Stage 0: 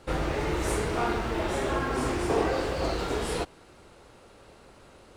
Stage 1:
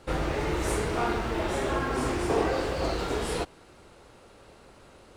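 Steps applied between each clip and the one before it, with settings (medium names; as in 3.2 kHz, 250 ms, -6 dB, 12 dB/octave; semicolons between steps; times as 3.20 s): no audible change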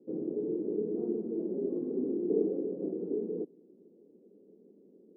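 Chebyshev band-pass 190–440 Hz, order 3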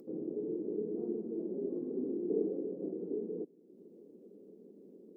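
upward compressor, threshold -42 dBFS; trim -4 dB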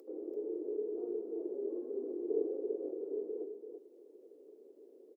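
inverse Chebyshev high-pass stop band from 180 Hz, stop band 40 dB; on a send: delay 336 ms -7.5 dB; on the sum: trim +1 dB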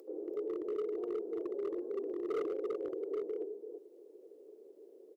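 hard clipper -33 dBFS, distortion -13 dB; peaking EQ 260 Hz -10 dB 0.33 oct; trim +2.5 dB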